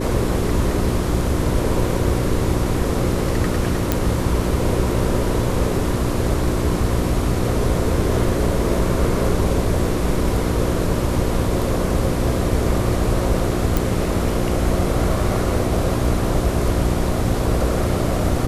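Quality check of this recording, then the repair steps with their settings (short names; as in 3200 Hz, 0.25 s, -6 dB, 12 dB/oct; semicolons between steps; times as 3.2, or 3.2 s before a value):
hum 60 Hz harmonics 6 -24 dBFS
3.92 pop
13.77 pop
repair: de-click; de-hum 60 Hz, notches 6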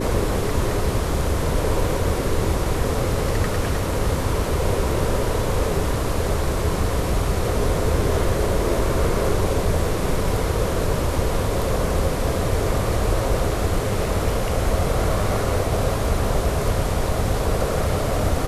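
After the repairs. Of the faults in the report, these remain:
none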